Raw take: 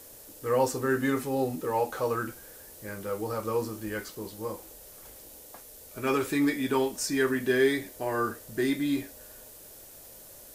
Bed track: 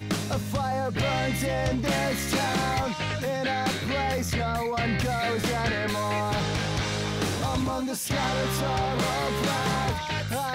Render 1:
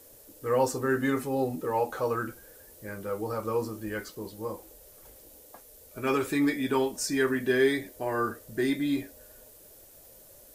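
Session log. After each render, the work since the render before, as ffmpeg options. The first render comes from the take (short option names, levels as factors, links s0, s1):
-af "afftdn=nr=6:nf=-49"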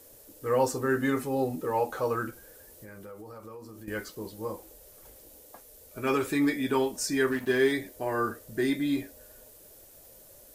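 -filter_complex "[0:a]asettb=1/sr,asplit=3[s0][s1][s2];[s0]atrim=end=2.304[s3];[s1]atrim=start=2.3:end=3.88,asetpts=PTS-STARTPTS,afade=t=in:d=0.004:c=qsin,afade=t=out:st=1.576:d=0.004:c=qsin,acompressor=threshold=0.00794:ratio=6:attack=3.2:release=140:knee=1:detection=peak[s4];[s2]atrim=start=3.876[s5];[s3][s4]acrossfade=d=0.004:c1=hsin:c2=qsin[s6];[s6][s5]acrossfade=d=0.004:c1=qsin:c2=hsin,asettb=1/sr,asplit=3[s7][s8][s9];[s7]atrim=end=7.314[s10];[s8]atrim=start=7.31:end=7.72,asetpts=PTS-STARTPTS,afade=t=in:d=0.004:c=qsin,afade=t=out:st=0.406:d=0.004:c=qsin,aeval=exprs='sgn(val(0))*max(abs(val(0))-0.00794,0)':c=same[s11];[s9]atrim=start=7.716[s12];[s10][s11]acrossfade=d=0.004:c1=hsin:c2=qsin[s13];[s13][s12]acrossfade=d=0.004:c1=qsin:c2=hsin"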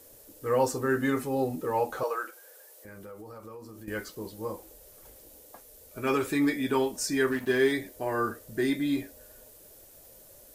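-filter_complex "[0:a]asettb=1/sr,asplit=3[s0][s1][s2];[s0]atrim=end=2.034[s3];[s1]atrim=start=2.03:end=2.85,asetpts=PTS-STARTPTS,afade=t=in:d=0.004:c=qsin,afade=t=out:st=0.816:d=0.004:c=qsin,highpass=f=470:w=0.5412,highpass=f=470:w=1.3066[s4];[s2]atrim=start=2.846[s5];[s3][s4]acrossfade=d=0.004:c1=hsin:c2=qsin[s6];[s6][s5]acrossfade=d=0.004:c1=qsin:c2=hsin"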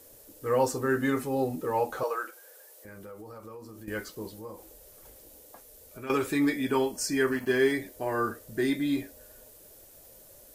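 -filter_complex "[0:a]asettb=1/sr,asplit=3[s0][s1][s2];[s0]atrim=end=4.384[s3];[s1]atrim=start=4.38:end=6.1,asetpts=PTS-STARTPTS,afade=t=in:d=0.004:c=qsin,afade=t=out:st=1.716:d=0.004:c=qsin,acompressor=threshold=0.00708:ratio=2:attack=3.2:release=140:knee=1:detection=peak[s4];[s2]atrim=start=6.096[s5];[s3][s4]acrossfade=d=0.004:c1=hsin:c2=qsin[s6];[s6][s5]acrossfade=d=0.004:c1=qsin:c2=hsin,asettb=1/sr,asplit=3[s7][s8][s9];[s7]atrim=end=6.654[s10];[s8]atrim=start=6.65:end=7.82,asetpts=PTS-STARTPTS,afade=t=in:d=0.004:c=qsin,afade=t=out:st=1.166:d=0.004:c=qsin,asuperstop=centerf=3700:order=12:qfactor=7.4[s11];[s9]atrim=start=7.816[s12];[s10][s11]acrossfade=d=0.004:c1=hsin:c2=qsin[s13];[s13][s12]acrossfade=d=0.004:c1=qsin:c2=hsin"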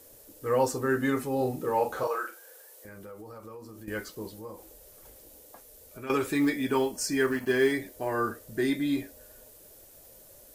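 -filter_complex "[0:a]asettb=1/sr,asplit=3[s0][s1][s2];[s0]atrim=end=1.374[s3];[s1]atrim=start=1.37:end=2.89,asetpts=PTS-STARTPTS,afade=t=in:d=0.004:c=qsin,afade=t=out:st=1.516:d=0.004:c=qsin,asplit=2[s4][s5];[s5]adelay=39,volume=0.501[s6];[s4][s6]amix=inputs=2:normalize=0,atrim=end_sample=67032[s7];[s2]atrim=start=2.886[s8];[s3][s7]acrossfade=d=0.004:c1=hsin:c2=qsin[s9];[s9][s8]acrossfade=d=0.004:c1=qsin:c2=hsin,asettb=1/sr,asplit=3[s10][s11][s12];[s10]atrim=end=6.354[s13];[s11]atrim=start=6.35:end=8.08,asetpts=PTS-STARTPTS,afade=t=in:d=0.004:c=qsin,afade=t=out:st=1.726:d=0.004:c=qsin,acrusher=bits=8:mode=log:mix=0:aa=0.000001[s14];[s12]atrim=start=8.076[s15];[s13][s14]acrossfade=d=0.004:c1=hsin:c2=qsin[s16];[s16][s15]acrossfade=d=0.004:c1=qsin:c2=hsin"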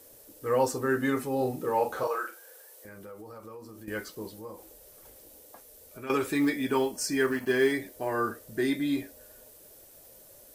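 -af "lowshelf=f=83:g=-6,bandreject=f=6900:w=30"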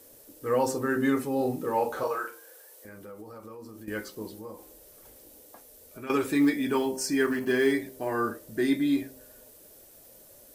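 -af "equalizer=f=260:t=o:w=0.89:g=4,bandreject=f=65.65:t=h:w=4,bandreject=f=131.3:t=h:w=4,bandreject=f=196.95:t=h:w=4,bandreject=f=262.6:t=h:w=4,bandreject=f=328.25:t=h:w=4,bandreject=f=393.9:t=h:w=4,bandreject=f=459.55:t=h:w=4,bandreject=f=525.2:t=h:w=4,bandreject=f=590.85:t=h:w=4,bandreject=f=656.5:t=h:w=4,bandreject=f=722.15:t=h:w=4,bandreject=f=787.8:t=h:w=4,bandreject=f=853.45:t=h:w=4,bandreject=f=919.1:t=h:w=4,bandreject=f=984.75:t=h:w=4,bandreject=f=1050.4:t=h:w=4"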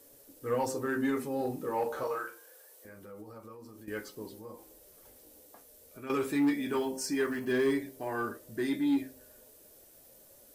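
-af "flanger=delay=7:depth=8.2:regen=62:speed=0.25:shape=sinusoidal,asoftclip=type=tanh:threshold=0.0944"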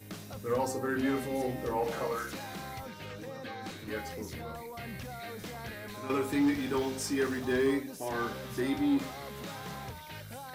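-filter_complex "[1:a]volume=0.168[s0];[0:a][s0]amix=inputs=2:normalize=0"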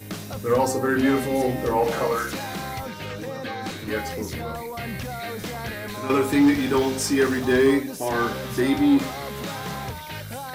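-af "volume=3.16"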